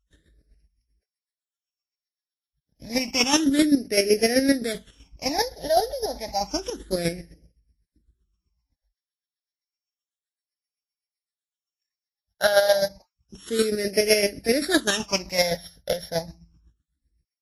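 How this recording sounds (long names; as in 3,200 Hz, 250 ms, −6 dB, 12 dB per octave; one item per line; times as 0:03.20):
a buzz of ramps at a fixed pitch in blocks of 8 samples
chopped level 7.8 Hz, depth 60%, duty 25%
phaser sweep stages 8, 0.3 Hz, lowest notch 330–1,100 Hz
Ogg Vorbis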